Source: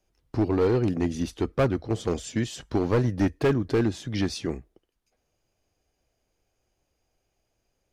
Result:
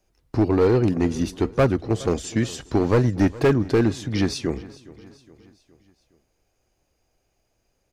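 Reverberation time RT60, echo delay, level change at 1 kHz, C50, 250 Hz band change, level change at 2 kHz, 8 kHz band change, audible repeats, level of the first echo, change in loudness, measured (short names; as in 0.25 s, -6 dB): none, 0.415 s, +4.5 dB, none, +4.5 dB, +4.5 dB, +4.5 dB, 3, -20.0 dB, +4.5 dB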